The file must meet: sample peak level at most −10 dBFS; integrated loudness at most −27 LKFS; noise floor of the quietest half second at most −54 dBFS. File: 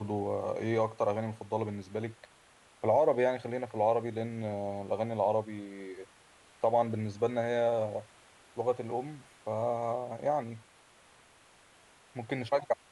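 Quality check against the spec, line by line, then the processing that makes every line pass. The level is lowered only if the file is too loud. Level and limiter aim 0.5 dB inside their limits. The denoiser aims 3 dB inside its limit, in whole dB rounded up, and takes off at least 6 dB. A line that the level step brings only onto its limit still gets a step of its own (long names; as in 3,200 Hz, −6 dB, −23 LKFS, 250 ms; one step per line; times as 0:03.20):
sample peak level −15.0 dBFS: in spec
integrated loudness −32.5 LKFS: in spec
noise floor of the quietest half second −61 dBFS: in spec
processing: no processing needed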